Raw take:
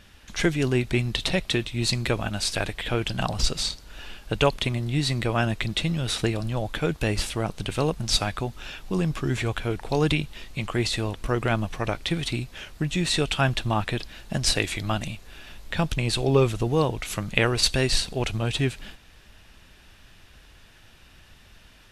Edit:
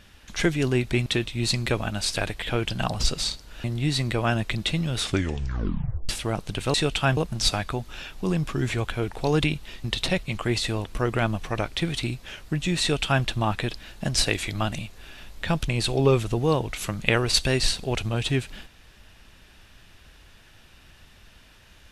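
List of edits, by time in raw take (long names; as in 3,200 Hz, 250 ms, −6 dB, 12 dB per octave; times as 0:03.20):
0:01.06–0:01.45: move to 0:10.52
0:04.03–0:04.75: remove
0:06.11: tape stop 1.09 s
0:13.10–0:13.53: duplicate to 0:07.85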